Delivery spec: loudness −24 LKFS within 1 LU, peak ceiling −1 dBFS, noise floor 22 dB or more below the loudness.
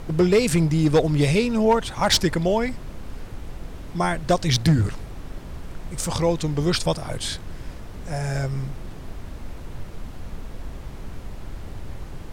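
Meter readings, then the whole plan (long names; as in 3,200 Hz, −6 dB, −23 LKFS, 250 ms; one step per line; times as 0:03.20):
share of clipped samples 0.3%; peaks flattened at −11.0 dBFS; background noise floor −38 dBFS; target noise floor −44 dBFS; integrated loudness −22.0 LKFS; sample peak −11.0 dBFS; target loudness −24.0 LKFS
→ clipped peaks rebuilt −11 dBFS
noise reduction from a noise print 6 dB
level −2 dB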